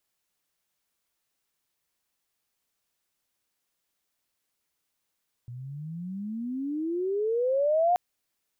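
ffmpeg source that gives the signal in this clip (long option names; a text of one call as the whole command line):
ffmpeg -f lavfi -i "aevalsrc='pow(10,(-19+18*(t/2.48-1))/20)*sin(2*PI*118*2.48/(31.5*log(2)/12)*(exp(31.5*log(2)/12*t/2.48)-1))':duration=2.48:sample_rate=44100" out.wav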